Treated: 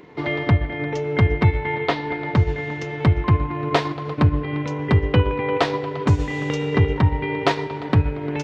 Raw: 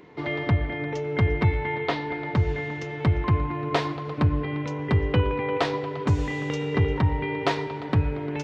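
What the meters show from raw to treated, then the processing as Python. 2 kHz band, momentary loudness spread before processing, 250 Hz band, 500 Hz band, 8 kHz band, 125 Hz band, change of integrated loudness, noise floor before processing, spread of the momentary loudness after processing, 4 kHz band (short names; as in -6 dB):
+4.0 dB, 6 LU, +4.5 dB, +4.0 dB, n/a, +5.0 dB, +4.5 dB, -34 dBFS, 7 LU, +4.5 dB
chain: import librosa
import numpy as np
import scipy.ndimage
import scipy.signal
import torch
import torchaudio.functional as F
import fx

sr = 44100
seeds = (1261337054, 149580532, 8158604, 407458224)

y = fx.transient(x, sr, attack_db=1, sustain_db=-5)
y = F.gain(torch.from_numpy(y), 4.5).numpy()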